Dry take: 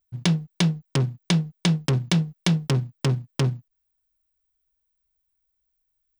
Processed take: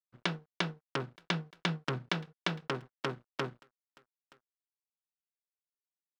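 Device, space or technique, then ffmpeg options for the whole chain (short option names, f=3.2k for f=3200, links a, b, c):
pocket radio on a weak battery: -filter_complex "[0:a]asettb=1/sr,asplit=3[a][b][c];[a]atrim=end=0.634[d];[b]atrim=start=0.63:end=2.12,asetpts=PTS-STARTPTS,afade=t=in:d=0.004:c=qsin,afade=t=out:st=1.486:d=0.004:c=qsin,asubboost=boost=4:cutoff=220[e];[c]atrim=start=2.116[f];[d][e]acrossfade=d=0.004:c1=hsin:c2=qsin[g];[g][f]acrossfade=d=0.004:c1=qsin:c2=hsin,highpass=340,lowpass=3.5k,aecho=1:1:924:0.0668,aeval=exprs='sgn(val(0))*max(abs(val(0))-0.002,0)':c=same,equalizer=f=1.4k:t=o:w=0.57:g=7.5,volume=-5dB"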